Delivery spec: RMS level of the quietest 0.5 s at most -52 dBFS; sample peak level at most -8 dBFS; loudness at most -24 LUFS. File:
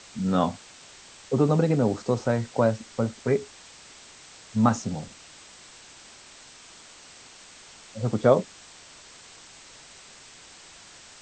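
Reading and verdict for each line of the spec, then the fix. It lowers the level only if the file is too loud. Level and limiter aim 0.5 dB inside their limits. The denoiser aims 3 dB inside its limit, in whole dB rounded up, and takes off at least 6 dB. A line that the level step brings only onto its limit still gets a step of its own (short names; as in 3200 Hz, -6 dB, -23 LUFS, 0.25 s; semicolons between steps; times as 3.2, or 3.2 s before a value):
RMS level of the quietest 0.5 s -49 dBFS: fail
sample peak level -6.0 dBFS: fail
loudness -25.0 LUFS: OK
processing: denoiser 6 dB, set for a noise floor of -49 dBFS; limiter -8.5 dBFS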